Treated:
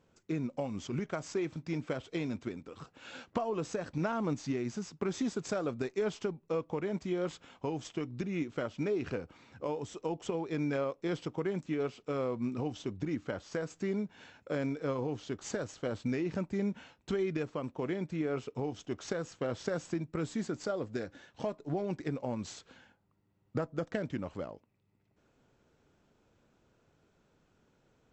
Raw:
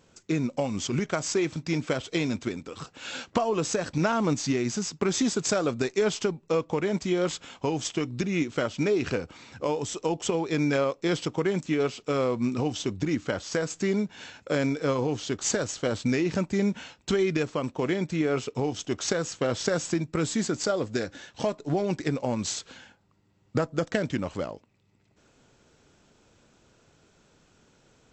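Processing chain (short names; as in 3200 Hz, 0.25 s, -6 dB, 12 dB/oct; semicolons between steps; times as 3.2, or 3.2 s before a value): high shelf 3200 Hz -11 dB; gain -7.5 dB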